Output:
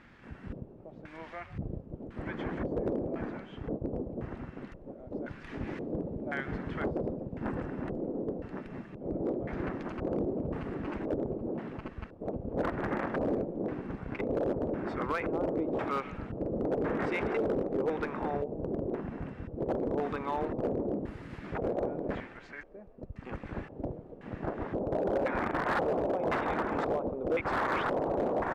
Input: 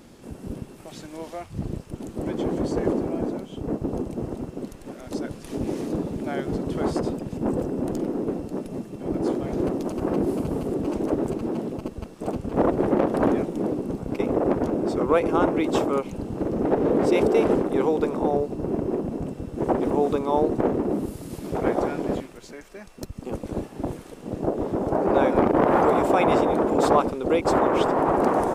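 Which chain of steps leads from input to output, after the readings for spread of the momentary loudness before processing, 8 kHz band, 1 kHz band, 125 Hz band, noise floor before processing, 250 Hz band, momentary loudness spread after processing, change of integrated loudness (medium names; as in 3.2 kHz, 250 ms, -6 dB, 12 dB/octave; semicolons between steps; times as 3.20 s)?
15 LU, no reading, -10.0 dB, -7.5 dB, -44 dBFS, -10.5 dB, 13 LU, -9.5 dB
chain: amplifier tone stack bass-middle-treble 5-5-5; peak limiter -30.5 dBFS, peak gain reduction 9 dB; frequency-shifting echo 132 ms, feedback 61%, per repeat +36 Hz, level -17.5 dB; LFO low-pass square 0.95 Hz 550–1800 Hz; hard clipper -32 dBFS, distortion -20 dB; trim +8 dB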